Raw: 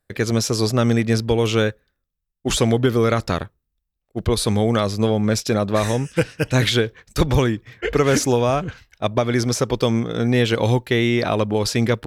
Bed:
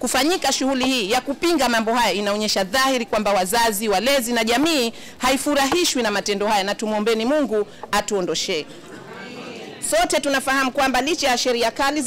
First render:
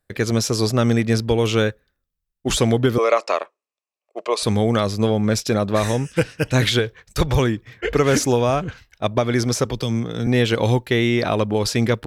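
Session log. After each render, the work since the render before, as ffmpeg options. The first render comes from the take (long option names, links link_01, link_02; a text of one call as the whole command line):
ffmpeg -i in.wav -filter_complex "[0:a]asettb=1/sr,asplit=3[link_01][link_02][link_03];[link_01]atrim=end=2.984[link_04];[link_02]atrim=start=2.98:end=4.43,asetpts=PTS-STARTPTS,afade=type=in:duration=0.004:curve=qsin,afade=type=out:start_time=1.446:duration=0.004:curve=qsin,highpass=frequency=410:width=0.5412,highpass=frequency=410:width=1.3066,equalizer=frequency=610:width_type=q:width=4:gain=8,equalizer=frequency=1100:width_type=q:width=4:gain=9,equalizer=frequency=1500:width_type=q:width=4:gain=-7,equalizer=frequency=2500:width_type=q:width=4:gain=8,equalizer=frequency=3600:width_type=q:width=4:gain=-6,lowpass=frequency=8500:width=0.5412,lowpass=frequency=8500:width=1.3066[link_05];[link_03]atrim=start=4.426[link_06];[link_04][link_05]acrossfade=duration=0.004:curve1=hsin:curve2=qsin[link_07];[link_07][link_06]acrossfade=duration=0.004:curve1=qsin:curve2=hsin,asettb=1/sr,asplit=3[link_08][link_09][link_10];[link_08]atrim=end=6.794[link_11];[link_09]atrim=start=6.79:end=7.4,asetpts=PTS-STARTPTS,afade=type=in:duration=0.004:curve=qsin,afade=type=out:start_time=0.606:duration=0.004:curve=qsin,equalizer=frequency=260:width_type=o:width=0.68:gain=-8[link_12];[link_10]atrim=start=7.396[link_13];[link_11][link_12]acrossfade=duration=0.004:curve1=hsin:curve2=qsin[link_14];[link_14][link_13]acrossfade=duration=0.004:curve1=qsin:curve2=hsin,asettb=1/sr,asplit=3[link_15][link_16][link_17];[link_15]atrim=end=9.654[link_18];[link_16]atrim=start=9.65:end=10.27,asetpts=PTS-STARTPTS,afade=type=in:duration=0.004:curve=qsin,afade=type=out:start_time=0.616:duration=0.004:curve=qsin,acrossover=split=230|3000[link_19][link_20][link_21];[link_20]acompressor=threshold=-26dB:ratio=6:attack=3.2:release=140:knee=2.83:detection=peak[link_22];[link_19][link_22][link_21]amix=inputs=3:normalize=0[link_23];[link_17]atrim=start=10.266[link_24];[link_18][link_23]acrossfade=duration=0.004:curve1=hsin:curve2=qsin[link_25];[link_25][link_24]acrossfade=duration=0.004:curve1=qsin:curve2=hsin" out.wav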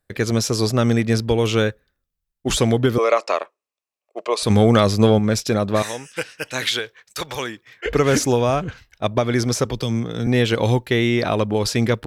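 ffmpeg -i in.wav -filter_complex "[0:a]asettb=1/sr,asplit=3[link_01][link_02][link_03];[link_01]atrim=end=4.504[link_04];[link_02]atrim=start=4.5:end=5.19,asetpts=PTS-STARTPTS,afade=type=in:duration=0.004:curve=qsin,afade=type=out:start_time=0.686:duration=0.004:curve=qsin,acontrast=27[link_05];[link_03]atrim=start=5.186[link_06];[link_04][link_05]acrossfade=duration=0.004:curve1=hsin:curve2=qsin[link_07];[link_07][link_06]acrossfade=duration=0.004:curve1=qsin:curve2=hsin,asettb=1/sr,asplit=3[link_08][link_09][link_10];[link_08]atrim=end=5.824[link_11];[link_09]atrim=start=5.82:end=7.86,asetpts=PTS-STARTPTS,afade=type=in:duration=0.004:curve=qsin,afade=type=out:start_time=2.036:duration=0.004:curve=qsin,highpass=frequency=1100:poles=1[link_12];[link_10]atrim=start=7.856[link_13];[link_11][link_12]acrossfade=duration=0.004:curve1=hsin:curve2=qsin[link_14];[link_14][link_13]acrossfade=duration=0.004:curve1=qsin:curve2=hsin" out.wav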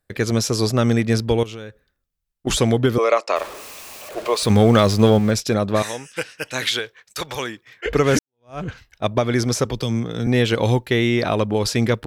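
ffmpeg -i in.wav -filter_complex "[0:a]asettb=1/sr,asplit=3[link_01][link_02][link_03];[link_01]atrim=end=1.434[link_04];[link_02]atrim=start=1.43:end=2.47,asetpts=PTS-STARTPTS,afade=type=in:duration=0.004:curve=qsin,afade=type=out:start_time=1.036:duration=0.004:curve=qsin,acompressor=threshold=-31dB:ratio=8:attack=3.2:release=140:knee=1:detection=peak[link_05];[link_03]atrim=start=2.466[link_06];[link_04][link_05]acrossfade=duration=0.004:curve1=hsin:curve2=qsin[link_07];[link_07][link_06]acrossfade=duration=0.004:curve1=qsin:curve2=hsin,asettb=1/sr,asplit=3[link_08][link_09][link_10];[link_08]atrim=end=3.364[link_11];[link_09]atrim=start=3.36:end=5.31,asetpts=PTS-STARTPTS,afade=type=in:duration=0.004:curve=qsin,afade=type=out:start_time=1.946:duration=0.004:curve=qsin,aeval=exprs='val(0)+0.5*0.0335*sgn(val(0))':channel_layout=same[link_12];[link_10]atrim=start=5.306[link_13];[link_11][link_12]acrossfade=duration=0.004:curve1=hsin:curve2=qsin[link_14];[link_14][link_13]acrossfade=duration=0.004:curve1=qsin:curve2=hsin,asplit=2[link_15][link_16];[link_15]atrim=end=8.19,asetpts=PTS-STARTPTS,afade=type=out:start_time=8.186:duration=0.004:curve=hsin[link_17];[link_16]atrim=start=8.19,asetpts=PTS-STARTPTS,afade=type=in:duration=0.42:curve=exp[link_18];[link_17][link_18]concat=n=2:v=0:a=1" out.wav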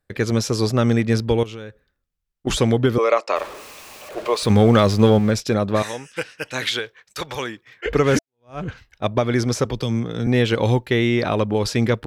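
ffmpeg -i in.wav -af "highshelf=frequency=5500:gain=-6.5,bandreject=frequency=670:width=19" out.wav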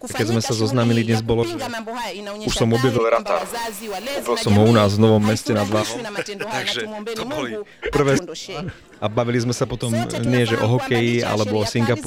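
ffmpeg -i in.wav -i bed.wav -filter_complex "[1:a]volume=-9dB[link_01];[0:a][link_01]amix=inputs=2:normalize=0" out.wav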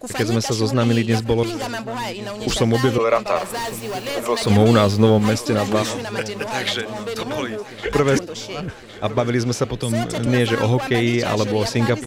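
ffmpeg -i in.wav -af "aecho=1:1:1110|2220|3330|4440|5550:0.141|0.0805|0.0459|0.0262|0.0149" out.wav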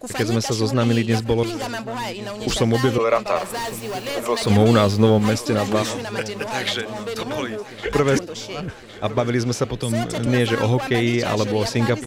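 ffmpeg -i in.wav -af "volume=-1dB" out.wav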